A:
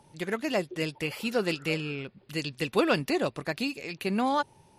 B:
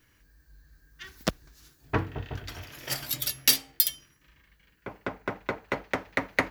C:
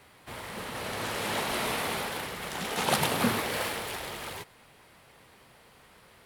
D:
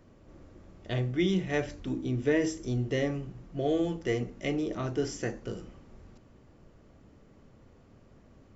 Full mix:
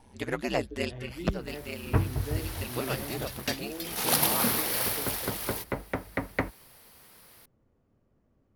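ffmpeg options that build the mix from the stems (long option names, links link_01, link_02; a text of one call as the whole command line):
ffmpeg -i stem1.wav -i stem2.wav -i stem3.wav -i stem4.wav -filter_complex "[0:a]aeval=exprs='val(0)*sin(2*PI*64*n/s)':channel_layout=same,volume=2dB[link_01];[1:a]lowpass=frequency=1500:poles=1,lowshelf=frequency=150:gain=12,volume=-2.5dB[link_02];[2:a]highshelf=frequency=6100:gain=11,aexciter=amount=1.1:drive=7.3:freq=4400,adelay=1200,volume=-3.5dB,afade=type=in:start_time=3.83:duration=0.27:silence=0.266073[link_03];[3:a]highshelf=frequency=2200:gain=-9,volume=-12.5dB,asplit=2[link_04][link_05];[link_05]apad=whole_len=211048[link_06];[link_01][link_06]sidechaincompress=threshold=-48dB:ratio=4:attack=16:release=731[link_07];[link_07][link_02][link_03][link_04]amix=inputs=4:normalize=0" out.wav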